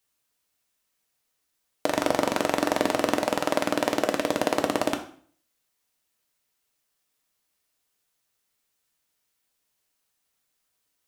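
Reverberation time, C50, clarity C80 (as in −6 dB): 0.50 s, 11.0 dB, 15.0 dB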